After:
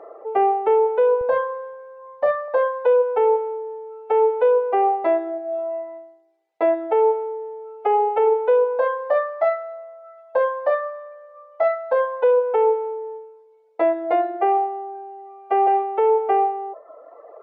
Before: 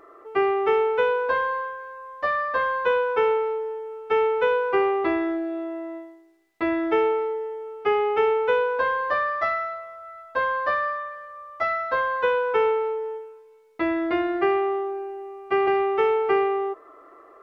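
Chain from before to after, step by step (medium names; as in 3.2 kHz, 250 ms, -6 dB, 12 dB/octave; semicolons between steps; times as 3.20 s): low-pass 1.8 kHz 6 dB/octave; reverb removal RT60 1.1 s; high-pass 170 Hz 12 dB/octave, from 1.21 s 66 Hz, from 2.48 s 320 Hz; high-order bell 630 Hz +15 dB 1.2 oct; peak limiter -11.5 dBFS, peak gain reduction 10.5 dB; trim +1 dB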